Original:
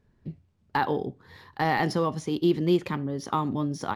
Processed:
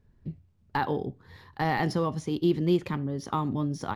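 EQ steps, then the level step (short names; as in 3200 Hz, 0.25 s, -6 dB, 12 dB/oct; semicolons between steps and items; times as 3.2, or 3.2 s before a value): low shelf 120 Hz +10 dB; -3.0 dB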